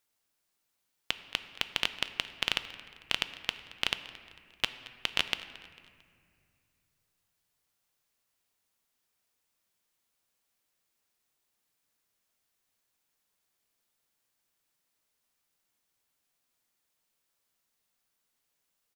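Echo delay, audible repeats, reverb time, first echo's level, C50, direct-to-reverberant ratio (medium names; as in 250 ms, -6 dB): 224 ms, 3, 2.2 s, -19.5 dB, 12.0 dB, 10.5 dB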